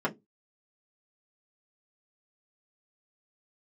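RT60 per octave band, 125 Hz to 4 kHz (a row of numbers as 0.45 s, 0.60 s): 0.25 s, 0.25 s, 0.25 s, 0.15 s, 0.10 s, 0.10 s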